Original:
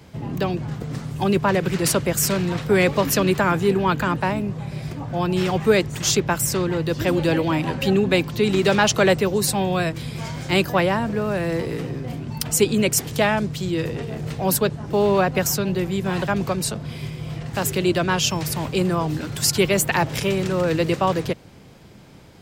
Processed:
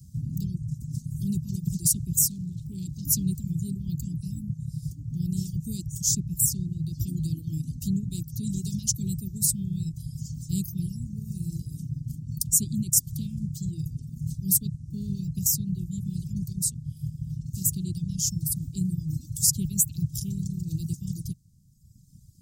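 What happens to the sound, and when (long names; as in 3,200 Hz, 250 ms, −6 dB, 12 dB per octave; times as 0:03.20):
0:02.27–0:03.07: saturating transformer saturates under 1,100 Hz
whole clip: inverse Chebyshev band-stop filter 540–2,000 Hz, stop band 70 dB; reverb reduction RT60 1.8 s; parametric band 810 Hz +9 dB 2.7 octaves; level +1.5 dB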